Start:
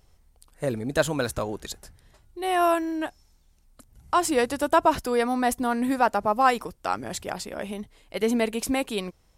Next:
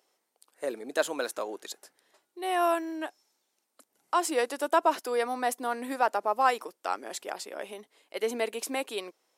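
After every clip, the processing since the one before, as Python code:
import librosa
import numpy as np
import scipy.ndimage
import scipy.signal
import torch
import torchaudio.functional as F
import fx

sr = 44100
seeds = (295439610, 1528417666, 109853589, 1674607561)

y = scipy.signal.sosfilt(scipy.signal.butter(4, 320.0, 'highpass', fs=sr, output='sos'), x)
y = y * 10.0 ** (-4.0 / 20.0)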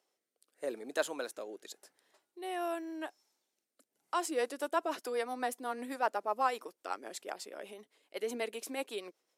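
y = fx.rotary_switch(x, sr, hz=0.85, then_hz=8.0, switch_at_s=3.94)
y = y * 10.0 ** (-4.0 / 20.0)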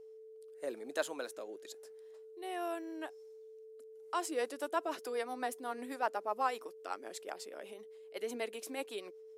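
y = x + 10.0 ** (-48.0 / 20.0) * np.sin(2.0 * np.pi * 440.0 * np.arange(len(x)) / sr)
y = y * 10.0 ** (-2.5 / 20.0)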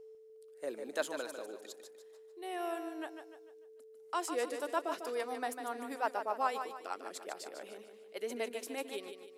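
y = fx.echo_feedback(x, sr, ms=149, feedback_pct=41, wet_db=-8.0)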